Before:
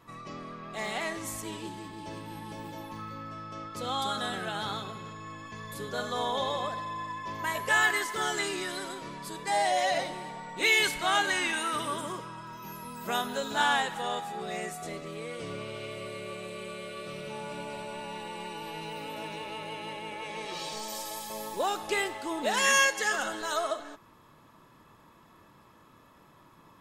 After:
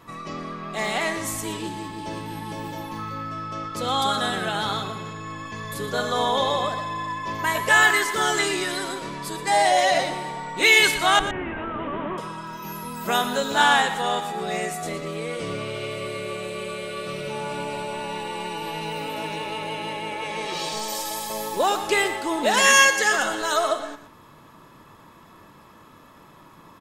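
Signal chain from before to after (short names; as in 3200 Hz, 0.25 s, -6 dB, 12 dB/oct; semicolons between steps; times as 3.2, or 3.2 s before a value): 11.19–12.18 delta modulation 16 kbps, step -45.5 dBFS; notches 60/120 Hz; echo 0.118 s -12 dB; gain +8 dB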